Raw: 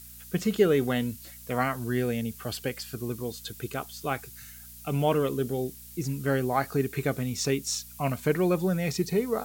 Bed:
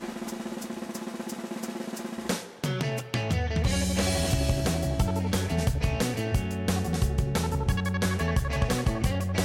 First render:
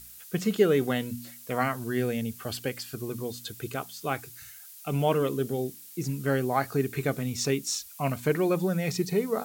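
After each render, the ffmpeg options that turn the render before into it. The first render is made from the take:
-af "bandreject=f=60:t=h:w=4,bandreject=f=120:t=h:w=4,bandreject=f=180:t=h:w=4,bandreject=f=240:t=h:w=4,bandreject=f=300:t=h:w=4"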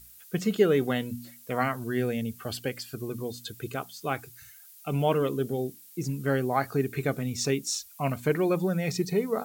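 -af "afftdn=nr=6:nf=-48"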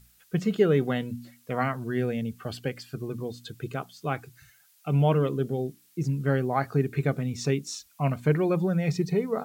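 -af "lowpass=f=3.3k:p=1,equalizer=f=150:t=o:w=0.3:g=8.5"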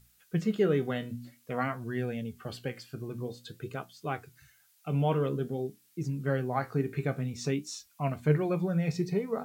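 -af "flanger=delay=9.1:depth=8.9:regen=62:speed=0.51:shape=sinusoidal"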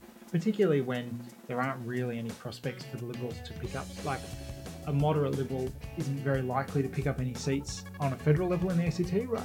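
-filter_complex "[1:a]volume=-16dB[a];[0:a][a]amix=inputs=2:normalize=0"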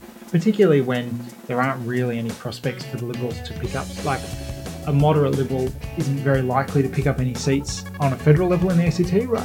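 -af "volume=10.5dB"

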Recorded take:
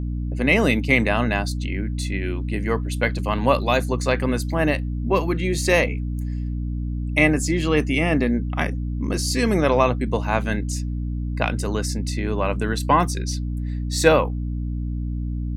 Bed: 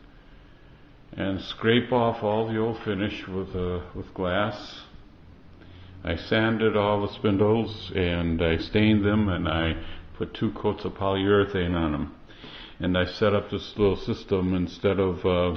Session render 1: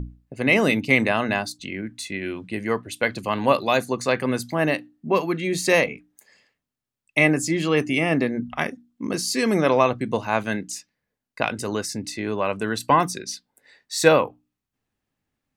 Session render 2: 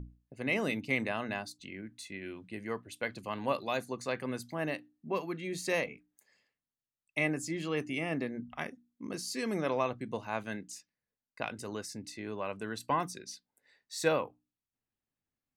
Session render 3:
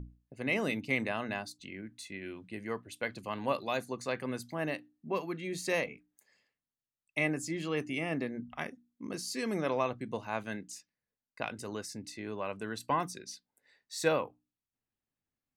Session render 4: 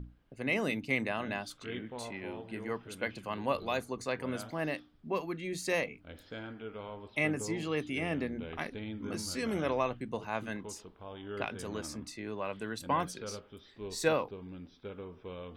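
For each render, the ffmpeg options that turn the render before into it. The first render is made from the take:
-af "bandreject=f=60:t=h:w=6,bandreject=f=120:t=h:w=6,bandreject=f=180:t=h:w=6,bandreject=f=240:t=h:w=6,bandreject=f=300:t=h:w=6"
-af "volume=-13dB"
-af anull
-filter_complex "[1:a]volume=-21dB[a];[0:a][a]amix=inputs=2:normalize=0"

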